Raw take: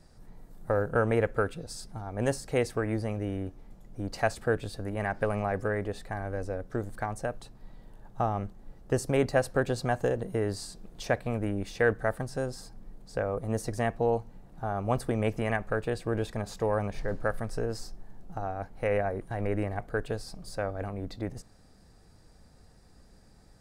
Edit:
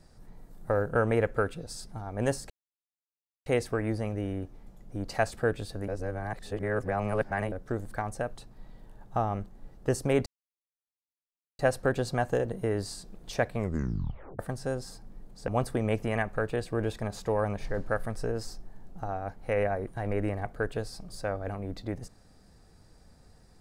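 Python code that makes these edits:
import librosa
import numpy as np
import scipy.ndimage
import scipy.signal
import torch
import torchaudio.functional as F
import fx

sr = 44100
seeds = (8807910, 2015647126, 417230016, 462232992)

y = fx.edit(x, sr, fx.insert_silence(at_s=2.5, length_s=0.96),
    fx.reverse_span(start_s=4.92, length_s=1.64),
    fx.insert_silence(at_s=9.3, length_s=1.33),
    fx.tape_stop(start_s=11.25, length_s=0.85),
    fx.cut(start_s=13.19, length_s=1.63), tone=tone)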